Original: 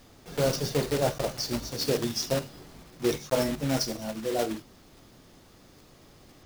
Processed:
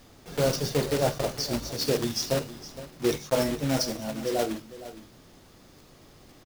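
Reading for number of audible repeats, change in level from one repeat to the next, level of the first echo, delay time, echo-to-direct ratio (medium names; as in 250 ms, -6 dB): 1, no regular repeats, -15.0 dB, 463 ms, -15.0 dB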